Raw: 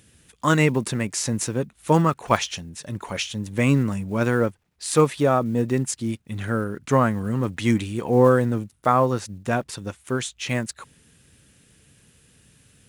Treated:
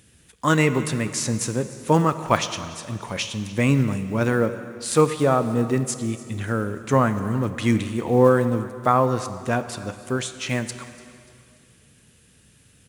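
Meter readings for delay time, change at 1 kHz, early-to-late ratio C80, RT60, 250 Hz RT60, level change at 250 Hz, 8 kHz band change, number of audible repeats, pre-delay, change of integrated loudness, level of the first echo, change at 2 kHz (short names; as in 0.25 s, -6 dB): 0.292 s, +0.5 dB, 11.5 dB, 2.3 s, 2.4 s, +0.5 dB, +0.5 dB, 2, 5 ms, 0.0 dB, -20.0 dB, +0.5 dB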